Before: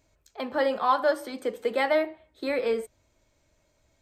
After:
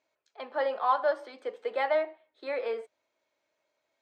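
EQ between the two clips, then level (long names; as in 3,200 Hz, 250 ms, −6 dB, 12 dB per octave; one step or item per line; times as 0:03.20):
dynamic equaliser 710 Hz, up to +5 dB, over −33 dBFS, Q 0.81
band-pass filter 480–4,100 Hz
−6.0 dB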